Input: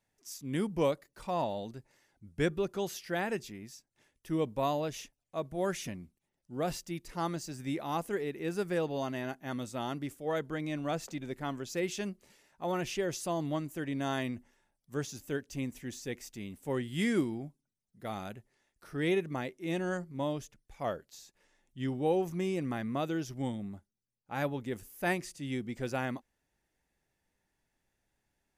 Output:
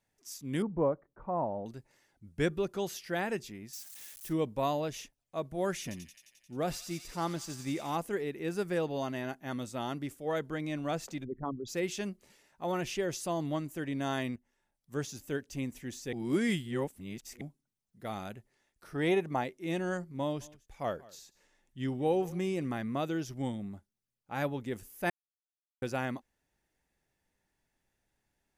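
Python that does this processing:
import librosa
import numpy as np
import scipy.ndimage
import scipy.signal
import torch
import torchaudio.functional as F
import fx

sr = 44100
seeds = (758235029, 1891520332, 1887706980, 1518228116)

y = fx.lowpass(x, sr, hz=1300.0, slope=24, at=(0.62, 1.66))
y = fx.crossing_spikes(y, sr, level_db=-39.5, at=(3.73, 4.33))
y = fx.echo_wet_highpass(y, sr, ms=88, feedback_pct=74, hz=3000.0, wet_db=-4.5, at=(5.82, 7.96))
y = fx.envelope_sharpen(y, sr, power=3.0, at=(11.23, 11.67), fade=0.02)
y = fx.peak_eq(y, sr, hz=800.0, db=9.5, octaves=0.83, at=(18.95, 19.44))
y = fx.echo_single(y, sr, ms=185, db=-22.0, at=(20.4, 22.67), fade=0.02)
y = fx.edit(y, sr, fx.fade_in_from(start_s=14.36, length_s=0.59, floor_db=-18.0),
    fx.reverse_span(start_s=16.13, length_s=1.28),
    fx.silence(start_s=25.1, length_s=0.72), tone=tone)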